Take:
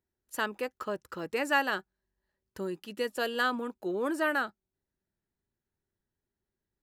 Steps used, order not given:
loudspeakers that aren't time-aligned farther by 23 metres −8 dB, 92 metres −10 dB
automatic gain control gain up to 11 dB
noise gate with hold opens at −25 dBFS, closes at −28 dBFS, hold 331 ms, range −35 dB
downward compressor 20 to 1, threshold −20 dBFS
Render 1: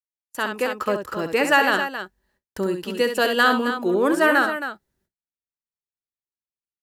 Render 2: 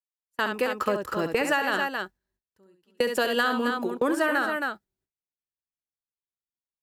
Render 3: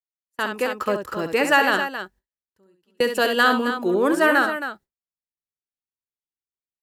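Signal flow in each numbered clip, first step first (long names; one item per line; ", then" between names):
downward compressor, then loudspeakers that aren't time-aligned, then automatic gain control, then noise gate with hold
noise gate with hold, then loudspeakers that aren't time-aligned, then automatic gain control, then downward compressor
downward compressor, then loudspeakers that aren't time-aligned, then noise gate with hold, then automatic gain control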